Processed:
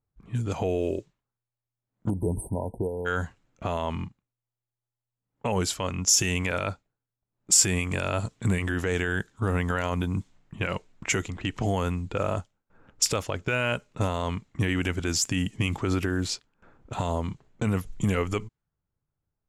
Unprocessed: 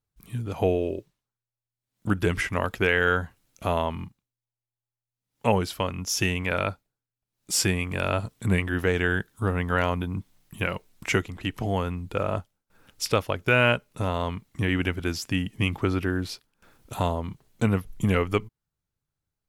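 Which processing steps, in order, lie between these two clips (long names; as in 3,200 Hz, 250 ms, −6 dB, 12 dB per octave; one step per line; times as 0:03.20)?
brickwall limiter −19 dBFS, peak gain reduction 11 dB
parametric band 7,200 Hz +13 dB 0.55 octaves
low-pass that shuts in the quiet parts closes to 1,200 Hz, open at −24.5 dBFS
time-frequency box erased 0:02.10–0:03.06, 1,000–8,200 Hz
level +2.5 dB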